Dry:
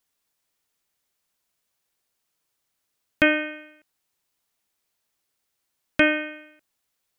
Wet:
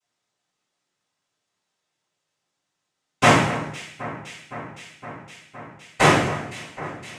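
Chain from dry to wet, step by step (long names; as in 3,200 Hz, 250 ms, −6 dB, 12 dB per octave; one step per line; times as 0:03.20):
cochlear-implant simulation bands 4
delay that swaps between a low-pass and a high-pass 257 ms, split 2,100 Hz, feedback 86%, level −14 dB
rectangular room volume 260 cubic metres, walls furnished, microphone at 6.7 metres
level −7.5 dB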